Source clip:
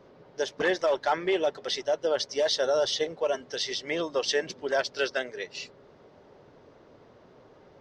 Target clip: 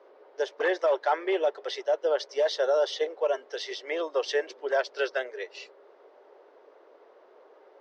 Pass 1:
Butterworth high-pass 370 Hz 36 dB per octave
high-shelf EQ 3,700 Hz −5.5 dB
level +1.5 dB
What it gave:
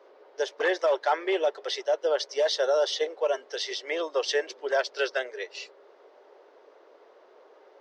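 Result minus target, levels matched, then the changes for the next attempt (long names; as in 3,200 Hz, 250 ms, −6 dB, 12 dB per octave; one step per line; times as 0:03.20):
8,000 Hz band +6.0 dB
change: high-shelf EQ 3,700 Hz −14.5 dB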